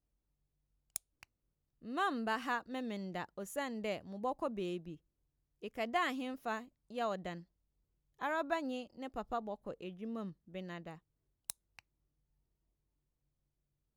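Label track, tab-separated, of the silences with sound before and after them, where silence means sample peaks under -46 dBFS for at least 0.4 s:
1.230000	1.850000	silence
4.950000	5.630000	silence
7.400000	8.210000	silence
10.950000	11.500000	silence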